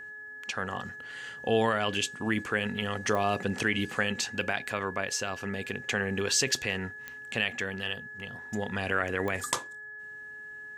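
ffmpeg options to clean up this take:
ffmpeg -i in.wav -af "adeclick=threshold=4,bandreject=frequency=424.6:width_type=h:width=4,bandreject=frequency=849.2:width_type=h:width=4,bandreject=frequency=1273.8:width_type=h:width=4,bandreject=frequency=1698.4:width_type=h:width=4,bandreject=frequency=1700:width=30" out.wav

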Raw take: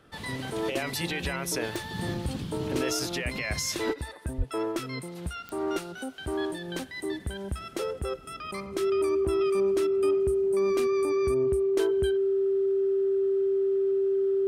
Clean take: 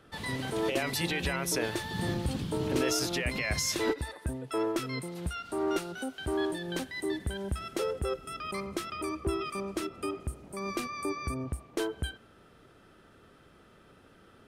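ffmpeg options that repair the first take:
ffmpeg -i in.wav -filter_complex "[0:a]adeclick=threshold=4,bandreject=frequency=390:width=30,asplit=3[link_01][link_02][link_03];[link_01]afade=type=out:start_time=4.37:duration=0.02[link_04];[link_02]highpass=frequency=140:width=0.5412,highpass=frequency=140:width=1.3066,afade=type=in:start_time=4.37:duration=0.02,afade=type=out:start_time=4.49:duration=0.02[link_05];[link_03]afade=type=in:start_time=4.49:duration=0.02[link_06];[link_04][link_05][link_06]amix=inputs=3:normalize=0" out.wav

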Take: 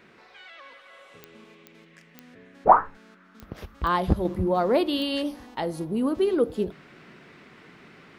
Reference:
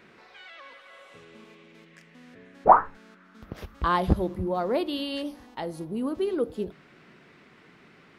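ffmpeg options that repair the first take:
ffmpeg -i in.wav -af "adeclick=threshold=4,asetnsamples=nb_out_samples=441:pad=0,asendcmd='4.25 volume volume -4.5dB',volume=0dB" out.wav

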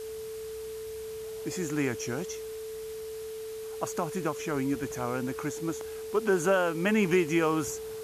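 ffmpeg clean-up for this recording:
ffmpeg -i in.wav -af "bandreject=frequency=440:width=30,afwtdn=0.0035" out.wav

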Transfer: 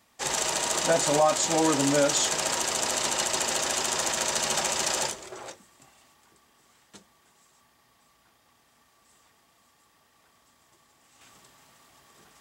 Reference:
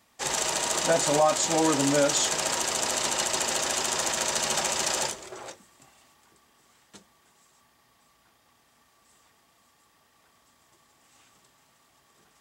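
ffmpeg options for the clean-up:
ffmpeg -i in.wav -af "asetnsamples=nb_out_samples=441:pad=0,asendcmd='11.21 volume volume -5.5dB',volume=0dB" out.wav

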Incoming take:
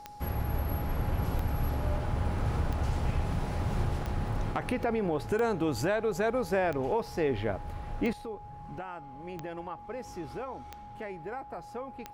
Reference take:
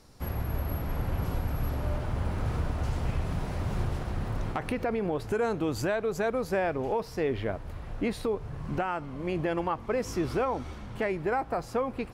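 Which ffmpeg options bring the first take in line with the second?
ffmpeg -i in.wav -af "adeclick=threshold=4,bandreject=frequency=830:width=30,asetnsamples=nb_out_samples=441:pad=0,asendcmd='8.13 volume volume 10.5dB',volume=0dB" out.wav

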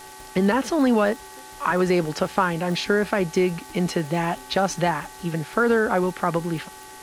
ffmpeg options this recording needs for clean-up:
ffmpeg -i in.wav -af "adeclick=threshold=4,bandreject=frequency=380.9:width_type=h:width=4,bandreject=frequency=761.8:width_type=h:width=4,bandreject=frequency=1142.7:width_type=h:width=4,bandreject=frequency=1523.6:width_type=h:width=4,bandreject=frequency=1904.5:width_type=h:width=4,bandreject=frequency=860:width=30,afftdn=noise_reduction=26:noise_floor=-42" out.wav

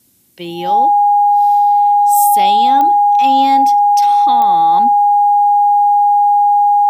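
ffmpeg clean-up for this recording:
ffmpeg -i in.wav -af "adeclick=threshold=4,bandreject=frequency=820:width=30,agate=range=-21dB:threshold=-6dB" out.wav

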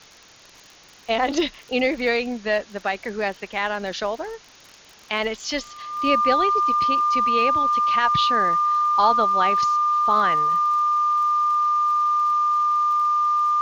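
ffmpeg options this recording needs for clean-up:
ffmpeg -i in.wav -af "adeclick=threshold=4,bandreject=frequency=1200:width=30,afwtdn=0.0056" out.wav

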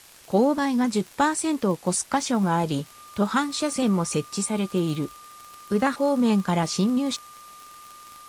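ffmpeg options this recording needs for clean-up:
ffmpeg -i in.wav -af "adeclick=threshold=4,bandreject=frequency=1200:width=30,afwtdn=0.0035" out.wav

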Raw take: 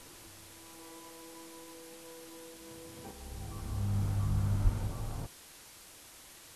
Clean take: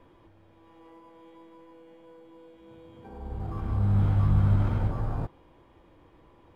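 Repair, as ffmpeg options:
ffmpeg -i in.wav -filter_complex "[0:a]asplit=3[link_01][link_02][link_03];[link_01]afade=type=out:start_time=4.63:duration=0.02[link_04];[link_02]highpass=frequency=140:width=0.5412,highpass=frequency=140:width=1.3066,afade=type=in:start_time=4.63:duration=0.02,afade=type=out:start_time=4.75:duration=0.02[link_05];[link_03]afade=type=in:start_time=4.75:duration=0.02[link_06];[link_04][link_05][link_06]amix=inputs=3:normalize=0,afwtdn=0.0025,asetnsamples=nb_out_samples=441:pad=0,asendcmd='3.11 volume volume 9dB',volume=0dB" out.wav

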